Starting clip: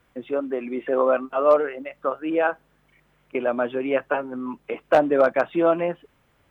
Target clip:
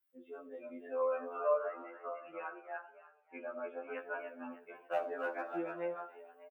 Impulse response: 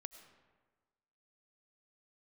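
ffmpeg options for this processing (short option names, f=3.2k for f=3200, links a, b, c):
-filter_complex "[0:a]asettb=1/sr,asplit=3[a][b][c];[a]atrim=end=1.454[d];[b]atrim=start=1.45:end=3.95,asetpts=PTS-STARTPTS,afade=t=in:d=0.004:c=qsin,afade=t=out:st=2.496:d=0.004:c=qsin,lowpass=f=2.9k:w=0.5412,lowpass=f=2.9k:w=1.3066[e];[c]atrim=start=3.946[f];[d][e]acrossfade=d=0.004:c1=hsin:c2=qsin[g];[g][f]acrossfade=d=0.004:c1=qsin:c2=hsin[h];[1:a]atrim=start_sample=2205,asetrate=83790,aresample=44100[i];[h][i]afir=irnorm=-1:irlink=0,flanger=delay=9.6:depth=4.2:regen=-39:speed=0.94:shape=sinusoidal,afftdn=nr=15:nf=-47,aemphasis=mode=production:type=riaa,asplit=5[j][k][l][m][n];[k]adelay=298,afreqshift=45,volume=-7dB[o];[l]adelay=596,afreqshift=90,volume=-17.2dB[p];[m]adelay=894,afreqshift=135,volume=-27.3dB[q];[n]adelay=1192,afreqshift=180,volume=-37.5dB[r];[j][o][p][q][r]amix=inputs=5:normalize=0,afftfilt=real='re*2*eq(mod(b,4),0)':imag='im*2*eq(mod(b,4),0)':win_size=2048:overlap=0.75"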